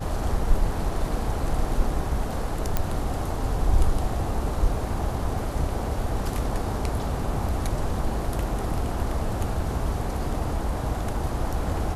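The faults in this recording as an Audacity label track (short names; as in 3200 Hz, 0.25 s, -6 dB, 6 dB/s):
2.770000	2.770000	pop -9 dBFS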